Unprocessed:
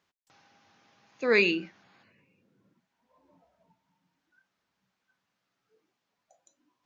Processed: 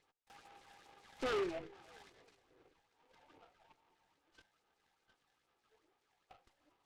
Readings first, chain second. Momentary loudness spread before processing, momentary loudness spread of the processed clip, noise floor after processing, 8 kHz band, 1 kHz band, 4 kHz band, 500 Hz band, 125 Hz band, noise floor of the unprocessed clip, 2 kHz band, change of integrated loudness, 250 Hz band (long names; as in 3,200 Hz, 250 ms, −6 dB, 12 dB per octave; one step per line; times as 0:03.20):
11 LU, 22 LU, −82 dBFS, can't be measured, −3.5 dB, −14.0 dB, −11.5 dB, −13.0 dB, −82 dBFS, −19.5 dB, −14.5 dB, −13.5 dB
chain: lower of the sound and its delayed copy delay 2.4 ms
low-shelf EQ 370 Hz −9 dB
all-pass phaser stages 8, 2.4 Hz, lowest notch 330–3,800 Hz
in parallel at +3 dB: downward compressor, threshold −41 dBFS, peak gain reduction 17 dB
on the sum: brickwall limiter −22.5 dBFS, peak gain reduction 8 dB
downsampling to 11,025 Hz
treble cut that deepens with the level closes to 760 Hz, closed at −36.5 dBFS
on a send: feedback echo with a high-pass in the loop 320 ms, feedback 62%, high-pass 720 Hz, level −21 dB
on the sum: wave folding −31 dBFS
bass and treble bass −6 dB, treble −11 dB
short delay modulated by noise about 1,500 Hz, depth 0.078 ms
level +1 dB